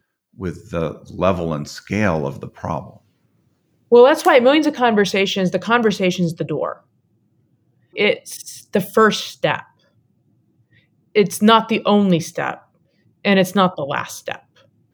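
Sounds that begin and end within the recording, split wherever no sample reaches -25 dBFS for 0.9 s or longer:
3.92–6.73
7.96–9.6

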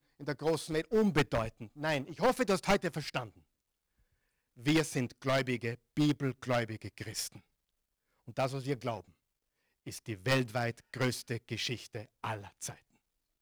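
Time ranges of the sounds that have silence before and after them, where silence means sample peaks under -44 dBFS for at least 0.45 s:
4.59–7.38
8.28–9
9.87–12.74

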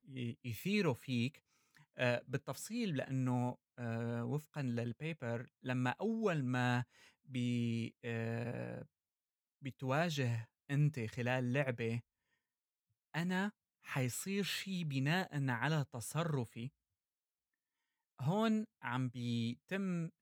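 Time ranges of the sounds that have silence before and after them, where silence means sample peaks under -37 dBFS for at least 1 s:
13.15–16.66

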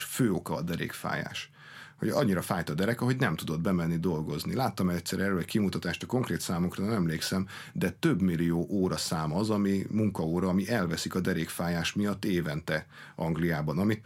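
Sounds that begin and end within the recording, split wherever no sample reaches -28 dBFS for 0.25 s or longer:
2.03–7.43
7.76–12.79

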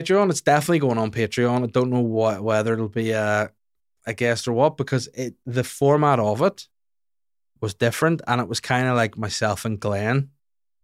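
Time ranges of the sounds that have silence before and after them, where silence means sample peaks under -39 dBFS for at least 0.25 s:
4.06–6.64
7.62–10.26

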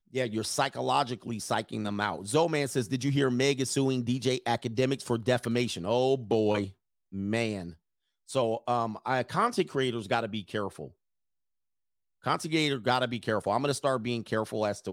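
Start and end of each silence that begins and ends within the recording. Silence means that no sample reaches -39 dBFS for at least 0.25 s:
6.7–7.13
7.71–8.29
10.88–12.26

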